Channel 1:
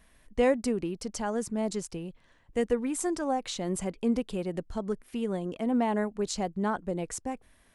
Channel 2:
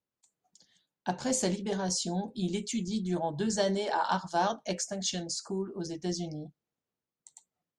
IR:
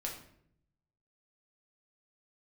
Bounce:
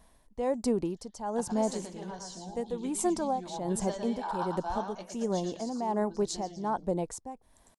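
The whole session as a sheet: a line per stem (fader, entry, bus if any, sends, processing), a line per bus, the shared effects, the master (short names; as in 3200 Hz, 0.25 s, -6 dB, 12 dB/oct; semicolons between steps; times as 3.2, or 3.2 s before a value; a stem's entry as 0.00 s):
+1.0 dB, 0.00 s, no send, no echo send, band shelf 1800 Hz -8.5 dB; tremolo 1.3 Hz, depth 73%
-1.5 dB, 0.30 s, no send, echo send -16.5 dB, auto duck -12 dB, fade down 1.30 s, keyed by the first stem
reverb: off
echo: feedback echo 0.113 s, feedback 26%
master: bell 980 Hz +9 dB 0.93 oct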